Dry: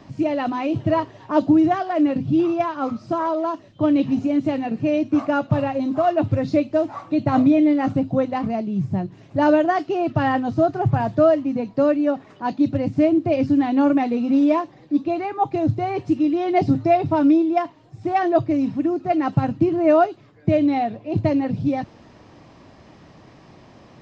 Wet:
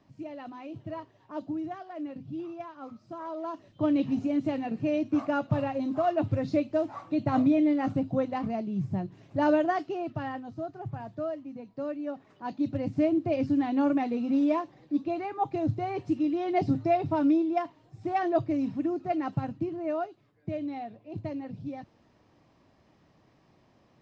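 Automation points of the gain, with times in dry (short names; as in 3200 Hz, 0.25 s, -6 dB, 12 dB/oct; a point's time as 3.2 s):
3.1 s -18.5 dB
3.69 s -7.5 dB
9.72 s -7.5 dB
10.48 s -18 dB
11.66 s -18 dB
12.9 s -8 dB
19.02 s -8 dB
19.94 s -16 dB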